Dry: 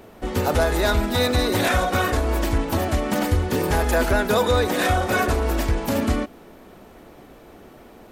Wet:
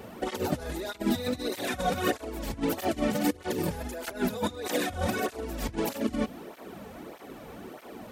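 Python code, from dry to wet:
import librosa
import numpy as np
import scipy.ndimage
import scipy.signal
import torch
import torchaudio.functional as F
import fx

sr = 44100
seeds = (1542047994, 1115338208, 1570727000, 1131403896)

y = fx.dynamic_eq(x, sr, hz=1200.0, q=0.77, threshold_db=-35.0, ratio=4.0, max_db=-6)
y = fx.over_compress(y, sr, threshold_db=-26.0, ratio=-0.5)
y = fx.flanger_cancel(y, sr, hz=1.6, depth_ms=3.3)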